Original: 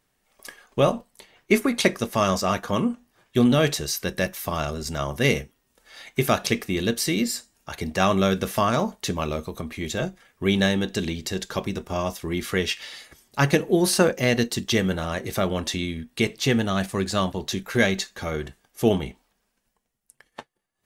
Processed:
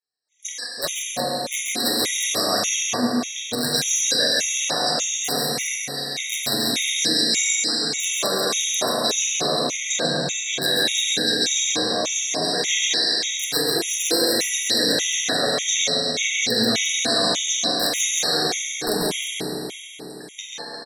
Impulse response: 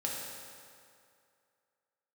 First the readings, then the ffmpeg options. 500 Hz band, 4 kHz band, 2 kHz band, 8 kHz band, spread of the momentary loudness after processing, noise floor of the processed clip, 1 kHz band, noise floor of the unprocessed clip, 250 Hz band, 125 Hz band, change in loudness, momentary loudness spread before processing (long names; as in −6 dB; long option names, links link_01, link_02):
−1.5 dB, +11.5 dB, +2.5 dB, +13.0 dB, 8 LU, −37 dBFS, −0.5 dB, −73 dBFS, −4.5 dB, −10.0 dB, +4.0 dB, 11 LU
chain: -filter_complex "[0:a]highpass=frequency=180:width=0.5412,highpass=frequency=180:width=1.3066,equalizer=frequency=190:width_type=q:width=4:gain=-9,equalizer=frequency=360:width_type=q:width=4:gain=-9,equalizer=frequency=930:width_type=q:width=4:gain=-7,equalizer=frequency=1300:width_type=q:width=4:gain=-6,equalizer=frequency=2900:width_type=q:width=4:gain=-6,equalizer=frequency=6400:width_type=q:width=4:gain=6,lowpass=frequency=7000:width=0.5412,lowpass=frequency=7000:width=1.3066,acontrast=80,bandreject=frequency=50:width_type=h:width=6,bandreject=frequency=100:width_type=h:width=6,bandreject=frequency=150:width_type=h:width=6,bandreject=frequency=200:width_type=h:width=6,bandreject=frequency=250:width_type=h:width=6,bandreject=frequency=300:width_type=h:width=6,bandreject=frequency=350:width_type=h:width=6,aeval=exprs='(mod(2.11*val(0)+1,2)-1)/2.11':channel_layout=same,flanger=delay=2.2:depth=8.4:regen=35:speed=0.22:shape=triangular,crystalizer=i=4.5:c=0,agate=range=-33dB:threshold=-46dB:ratio=3:detection=peak,areverse,acompressor=threshold=-27dB:ratio=4,areverse,equalizer=frequency=4000:width=7.8:gain=9.5,aecho=1:1:44|133|141|170|352:0.266|0.501|0.531|0.422|0.422[link_01];[1:a]atrim=start_sample=2205,asetrate=24696,aresample=44100[link_02];[link_01][link_02]afir=irnorm=-1:irlink=0,afftfilt=real='re*gt(sin(2*PI*1.7*pts/sr)*(1-2*mod(floor(b*sr/1024/1900),2)),0)':imag='im*gt(sin(2*PI*1.7*pts/sr)*(1-2*mod(floor(b*sr/1024/1900),2)),0)':win_size=1024:overlap=0.75"